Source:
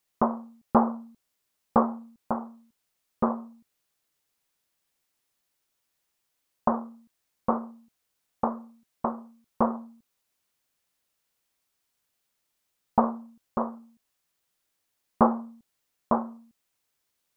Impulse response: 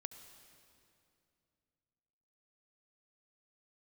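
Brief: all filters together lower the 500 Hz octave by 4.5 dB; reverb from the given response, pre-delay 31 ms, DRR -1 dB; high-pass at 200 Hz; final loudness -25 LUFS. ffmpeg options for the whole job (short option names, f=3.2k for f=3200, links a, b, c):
-filter_complex "[0:a]highpass=200,equalizer=f=500:t=o:g=-5.5,asplit=2[a][b];[1:a]atrim=start_sample=2205,adelay=31[c];[b][c]afir=irnorm=-1:irlink=0,volume=5dB[d];[a][d]amix=inputs=2:normalize=0,volume=3dB"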